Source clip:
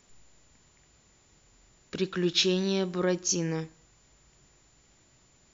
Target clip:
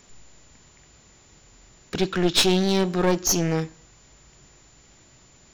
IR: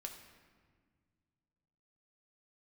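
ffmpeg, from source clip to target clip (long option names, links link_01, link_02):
-af "aeval=exprs='clip(val(0),-1,0.0266)':channel_layout=same,volume=8.5dB"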